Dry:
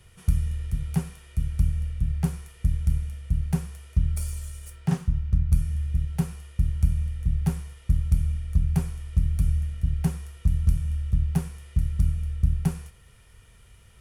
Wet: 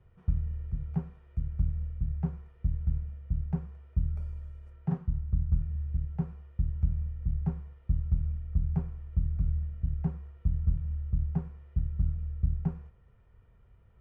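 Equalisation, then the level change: low-pass 1.1 kHz 12 dB/octave; -6.0 dB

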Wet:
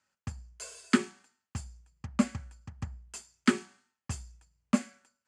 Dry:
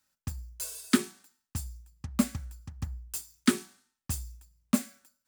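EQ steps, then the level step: cabinet simulation 100–6800 Hz, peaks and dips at 160 Hz -4 dB, 290 Hz -7 dB, 3.8 kHz -10 dB, 5.6 kHz -8 dB; +2.5 dB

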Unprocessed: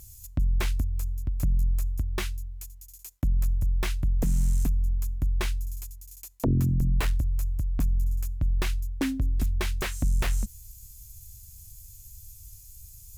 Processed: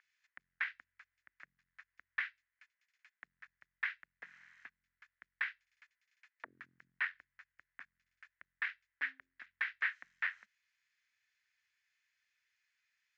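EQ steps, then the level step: ladder band-pass 1.9 kHz, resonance 55%; distance through air 220 m; peaking EQ 1.9 kHz +9.5 dB 0.8 oct; +2.5 dB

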